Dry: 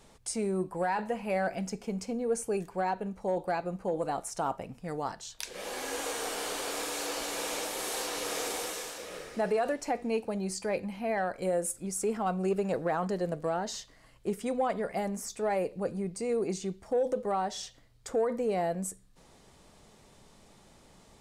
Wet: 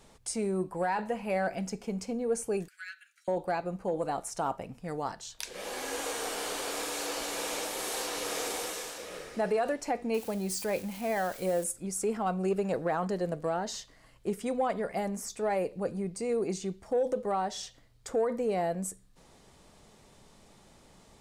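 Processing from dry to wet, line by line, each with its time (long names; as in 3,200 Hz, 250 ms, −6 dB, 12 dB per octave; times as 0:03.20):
0:02.68–0:03.28: Butterworth high-pass 1,400 Hz 96 dB per octave
0:10.14–0:11.64: spike at every zero crossing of −34 dBFS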